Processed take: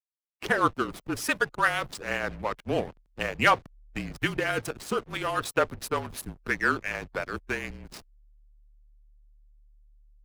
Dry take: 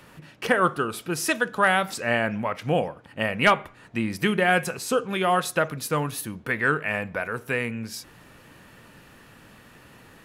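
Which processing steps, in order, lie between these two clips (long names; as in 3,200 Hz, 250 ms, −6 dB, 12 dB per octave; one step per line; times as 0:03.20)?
slack as between gear wheels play −26.5 dBFS
frequency shifter −37 Hz
harmonic and percussive parts rebalanced harmonic −11 dB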